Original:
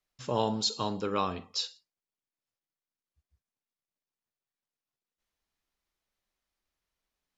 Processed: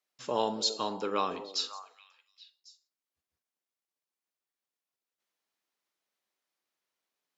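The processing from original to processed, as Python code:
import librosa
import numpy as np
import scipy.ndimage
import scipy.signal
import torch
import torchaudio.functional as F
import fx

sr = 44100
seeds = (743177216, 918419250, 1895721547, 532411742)

p1 = scipy.signal.sosfilt(scipy.signal.butter(2, 270.0, 'highpass', fs=sr, output='sos'), x)
y = p1 + fx.echo_stepped(p1, sr, ms=275, hz=390.0, octaves=1.4, feedback_pct=70, wet_db=-10.0, dry=0)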